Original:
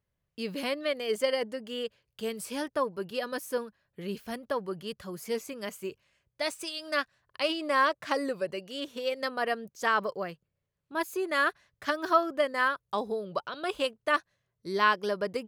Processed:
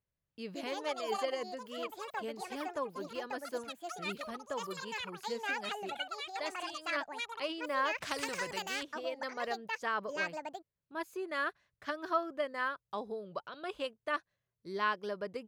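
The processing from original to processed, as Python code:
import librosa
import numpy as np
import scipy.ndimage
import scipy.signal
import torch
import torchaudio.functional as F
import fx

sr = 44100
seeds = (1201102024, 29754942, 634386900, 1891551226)

y = fx.echo_pitch(x, sr, ms=298, semitones=7, count=2, db_per_echo=-3.0)
y = fx.high_shelf(y, sr, hz=7300.0, db=-9.5)
y = fx.spectral_comp(y, sr, ratio=2.0, at=(7.98, 8.83))
y = F.gain(torch.from_numpy(y), -8.0).numpy()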